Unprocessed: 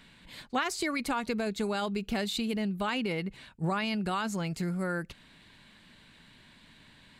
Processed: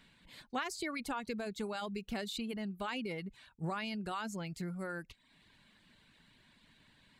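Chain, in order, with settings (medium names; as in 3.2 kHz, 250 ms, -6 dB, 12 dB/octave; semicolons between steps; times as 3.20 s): reverb removal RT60 0.58 s; trim -7 dB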